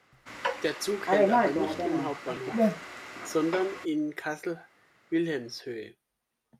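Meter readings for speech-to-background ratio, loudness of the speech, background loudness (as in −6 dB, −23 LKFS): −2.5 dB, −32.5 LKFS, −30.0 LKFS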